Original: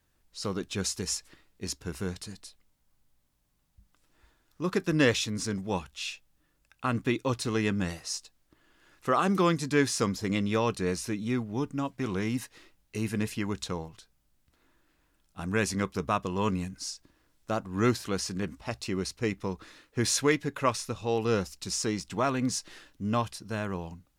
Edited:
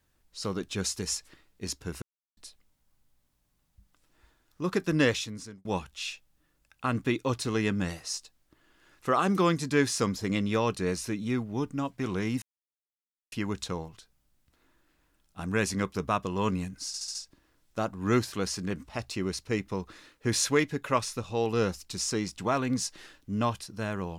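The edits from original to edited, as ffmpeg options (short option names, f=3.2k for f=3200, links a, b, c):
-filter_complex "[0:a]asplit=10[a][b][c][d][e][f][g][h][i][j];[a]atrim=end=2.02,asetpts=PTS-STARTPTS,afade=t=out:st=2.016:d=0.004:c=hsin[k];[b]atrim=start=2.02:end=2.37,asetpts=PTS-STARTPTS,volume=0[l];[c]atrim=start=2.37:end=5.65,asetpts=PTS-STARTPTS,afade=t=in:d=0.004:c=hsin,afade=t=out:st=2.61:d=0.67[m];[d]atrim=start=5.65:end=12.42,asetpts=PTS-STARTPTS,afade=t=in:d=0.004:c=hsin,afade=t=out:st=6.766:d=0.004:c=hsin[n];[e]atrim=start=12.42:end=13.32,asetpts=PTS-STARTPTS,volume=0[o];[f]atrim=start=13.32:end=16.942,asetpts=PTS-STARTPTS,afade=t=in:d=0.004:c=hsin[p];[g]atrim=start=16.868:end=16.942[q];[h]atrim=start=16.868:end=16.942[r];[i]atrim=start=16.868:end=16.942[s];[j]atrim=start=16.868[t];[k][l][m][n][o][p]concat=n=6:v=0:a=1[u];[u][q]acrossfade=d=0.004:c1=hsin:c2=hsin[v];[v][r]acrossfade=d=0.004:c1=hsin:c2=hsin[w];[w][s]acrossfade=d=0.004:c1=hsin:c2=hsin[x];[x][t]acrossfade=d=0.004:c1=hsin:c2=hsin"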